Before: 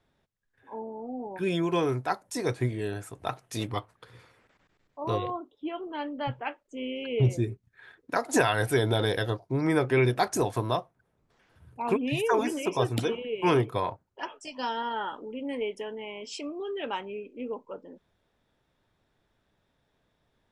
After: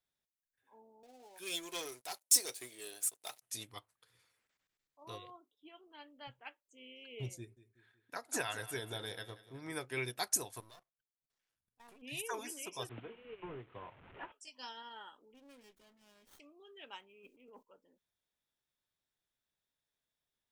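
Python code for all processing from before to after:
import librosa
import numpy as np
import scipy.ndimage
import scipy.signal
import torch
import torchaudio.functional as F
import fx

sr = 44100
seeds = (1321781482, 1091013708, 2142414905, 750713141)

y = fx.chain(x, sr, fx.highpass(hz=540.0, slope=12),
    fx.peak_eq(hz=1400.0, db=-11.5, octaves=1.7),
    fx.leveller(passes=3), at=(1.03, 3.42))
y = fx.chain(y, sr, fx.peak_eq(hz=9500.0, db=-7.5, octaves=2.3),
    fx.echo_feedback(ms=186, feedback_pct=48, wet_db=-12.5), at=(7.38, 9.73))
y = fx.chain(y, sr, fx.halfwave_gain(db=-12.0),
    fx.level_steps(step_db=18), at=(10.6, 12.02))
y = fx.chain(y, sr, fx.delta_mod(bps=16000, step_db=-35.5),
    fx.high_shelf(hz=2000.0, db=-10.0),
    fx.band_squash(depth_pct=100), at=(12.89, 14.32))
y = fx.chain(y, sr, fx.notch_comb(f0_hz=440.0),
    fx.dynamic_eq(hz=2700.0, q=5.0, threshold_db=-59.0, ratio=4.0, max_db=-7),
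    fx.running_max(window=17), at=(15.34, 16.4))
y = fx.chain(y, sr, fx.median_filter(points=3),
    fx.transient(attack_db=-6, sustain_db=12), at=(17.0, 17.63))
y = librosa.effects.preemphasis(y, coef=0.9, zi=[0.0])
y = fx.upward_expand(y, sr, threshold_db=-52.0, expansion=1.5)
y = y * 10.0 ** (6.0 / 20.0)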